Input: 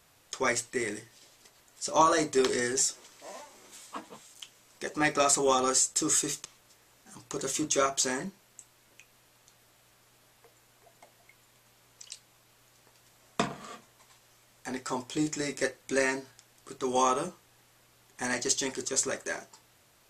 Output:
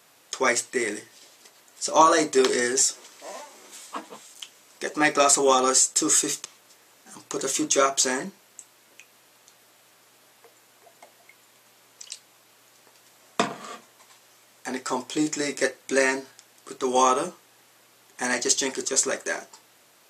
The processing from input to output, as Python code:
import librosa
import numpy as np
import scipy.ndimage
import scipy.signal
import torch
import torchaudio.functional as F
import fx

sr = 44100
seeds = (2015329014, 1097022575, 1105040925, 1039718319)

y = scipy.signal.sosfilt(scipy.signal.butter(2, 220.0, 'highpass', fs=sr, output='sos'), x)
y = F.gain(torch.from_numpy(y), 6.0).numpy()